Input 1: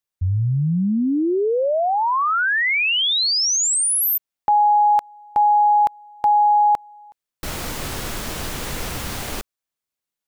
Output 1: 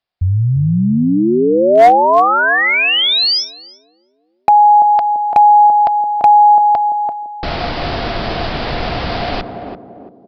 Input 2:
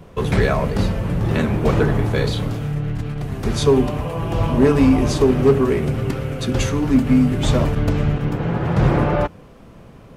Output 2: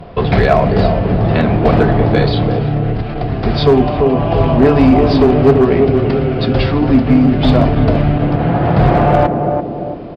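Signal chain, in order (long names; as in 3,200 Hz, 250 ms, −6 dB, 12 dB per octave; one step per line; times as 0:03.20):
feedback echo with a band-pass in the loop 339 ms, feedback 50%, band-pass 320 Hz, level −3.5 dB
in parallel at −2 dB: downward compressor 20 to 1, threshold −23 dBFS
on the sum: parametric band 700 Hz +12 dB 0.25 octaves
downsampling to 11,025 Hz
asymmetric clip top −6 dBFS, bottom −5 dBFS
level +3 dB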